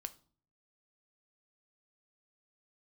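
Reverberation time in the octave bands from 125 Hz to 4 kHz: 0.75 s, 0.65 s, 0.50 s, 0.45 s, 0.30 s, 0.35 s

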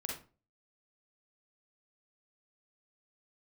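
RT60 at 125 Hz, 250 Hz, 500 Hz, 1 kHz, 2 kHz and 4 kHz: 0.50 s, 0.45 s, 0.40 s, 0.35 s, 0.30 s, 0.25 s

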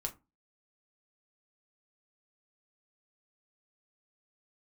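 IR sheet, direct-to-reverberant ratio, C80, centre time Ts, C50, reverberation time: 2.5 dB, 24.0 dB, 9 ms, 18.0 dB, 0.25 s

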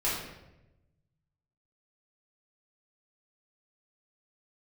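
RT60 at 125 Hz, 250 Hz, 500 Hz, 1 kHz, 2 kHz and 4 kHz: 1.9 s, 1.2 s, 1.1 s, 0.85 s, 0.80 s, 0.65 s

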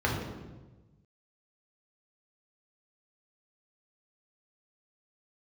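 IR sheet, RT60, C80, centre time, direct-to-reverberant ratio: 1.2 s, 5.0 dB, 55 ms, -3.0 dB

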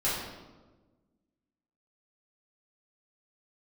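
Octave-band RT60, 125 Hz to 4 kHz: 1.7 s, 1.8 s, 1.4 s, 1.1 s, 0.90 s, 0.80 s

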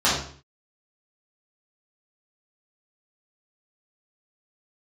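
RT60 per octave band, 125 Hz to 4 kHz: 0.60 s, 0.55 s, 0.50 s, 0.50 s, 0.45 s, 0.45 s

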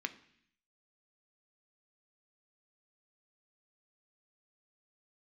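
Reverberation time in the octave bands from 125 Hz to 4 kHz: 0.90 s, 0.85 s, 0.65 s, 0.65 s, 0.85 s, 0.85 s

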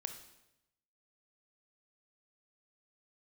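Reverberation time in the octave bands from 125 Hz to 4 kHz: 1.1 s, 0.95 s, 0.90 s, 0.85 s, 0.85 s, 0.80 s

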